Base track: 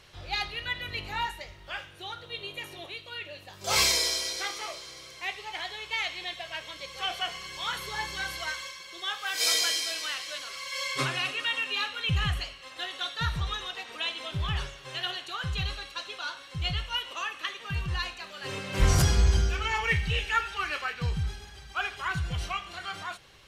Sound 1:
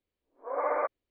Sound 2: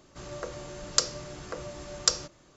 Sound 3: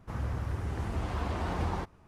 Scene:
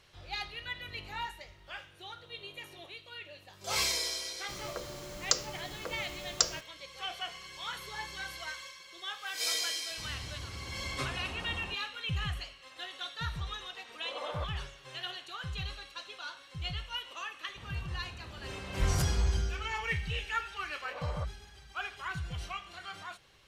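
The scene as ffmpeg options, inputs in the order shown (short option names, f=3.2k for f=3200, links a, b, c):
-filter_complex "[3:a]asplit=2[a][b];[1:a]asplit=2[c][d];[0:a]volume=-7dB[e];[2:a]acrusher=bits=7:mix=0:aa=0.000001,atrim=end=2.56,asetpts=PTS-STARTPTS,volume=-3.5dB,afade=t=in:d=0.004:c=hsin,afade=t=out:st=2.556:d=0.004:c=hsin,adelay=190953S[f];[a]atrim=end=2.07,asetpts=PTS-STARTPTS,volume=-10.5dB,afade=t=in:d=0.004:c=hsin,afade=t=out:st=2.066:d=0.004:c=hsin,adelay=9900[g];[c]atrim=end=1.1,asetpts=PTS-STARTPTS,volume=-11dB,afade=t=in:d=0.004:c=hsin,afade=t=out:st=1.096:d=0.004:c=hsin,adelay=13580[h];[b]atrim=end=2.07,asetpts=PTS-STARTPTS,volume=-14dB,afade=t=in:d=0.004:c=hsin,afade=t=out:st=2.066:d=0.004:c=hsin,adelay=770868S[i];[d]atrim=end=1.1,asetpts=PTS-STARTPTS,volume=-13.5dB,afade=t=in:d=0.004:c=hsin,afade=t=out:st=1.096:d=0.004:c=hsin,adelay=20380[j];[e][f][g][h][i][j]amix=inputs=6:normalize=0"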